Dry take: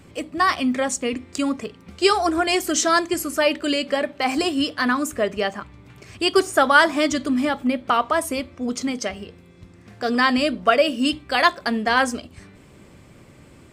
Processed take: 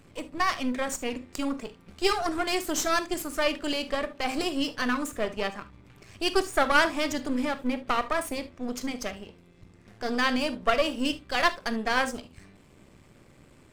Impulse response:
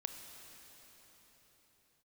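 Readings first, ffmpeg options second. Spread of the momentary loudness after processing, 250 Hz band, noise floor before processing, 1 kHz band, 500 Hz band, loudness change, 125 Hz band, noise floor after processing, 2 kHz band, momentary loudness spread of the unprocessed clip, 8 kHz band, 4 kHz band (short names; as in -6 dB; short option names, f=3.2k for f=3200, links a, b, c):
9 LU, -7.5 dB, -49 dBFS, -7.5 dB, -7.5 dB, -7.0 dB, -6.0 dB, -56 dBFS, -7.0 dB, 9 LU, -7.5 dB, -6.5 dB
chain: -filter_complex "[0:a]aeval=exprs='if(lt(val(0),0),0.251*val(0),val(0))':c=same[a];[1:a]atrim=start_sample=2205,atrim=end_sample=3528[b];[a][b]afir=irnorm=-1:irlink=0,volume=-1.5dB"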